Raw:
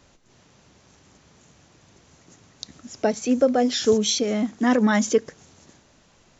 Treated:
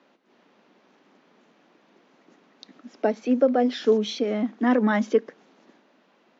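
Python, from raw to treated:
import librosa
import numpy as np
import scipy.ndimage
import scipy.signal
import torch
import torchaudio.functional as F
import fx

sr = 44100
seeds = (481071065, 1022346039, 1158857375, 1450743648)

y = scipy.signal.sosfilt(scipy.signal.butter(6, 210.0, 'highpass', fs=sr, output='sos'), x)
y = fx.air_absorb(y, sr, metres=290.0)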